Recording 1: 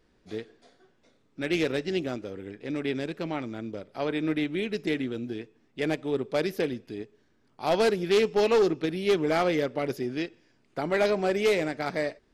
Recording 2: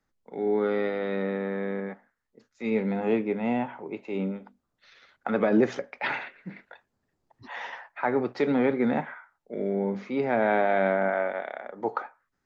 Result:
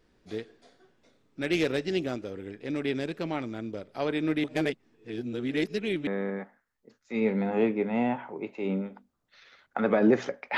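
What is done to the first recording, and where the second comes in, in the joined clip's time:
recording 1
4.44–6.07 reverse
6.07 switch to recording 2 from 1.57 s

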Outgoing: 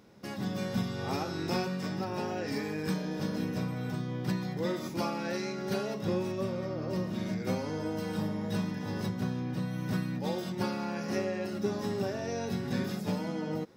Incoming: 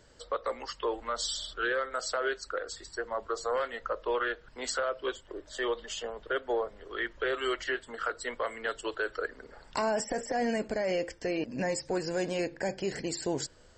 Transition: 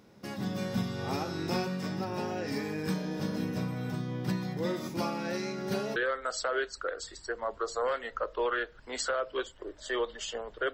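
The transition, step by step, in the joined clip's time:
outgoing
5.96 switch to incoming from 1.65 s

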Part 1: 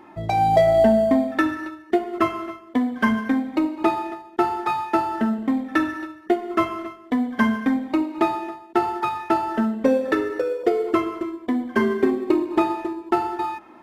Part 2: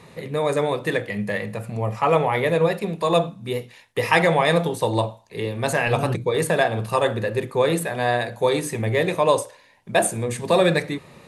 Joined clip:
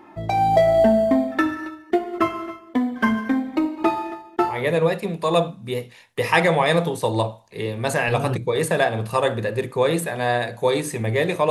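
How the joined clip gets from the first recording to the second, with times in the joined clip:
part 1
4.56 switch to part 2 from 2.35 s, crossfade 0.22 s

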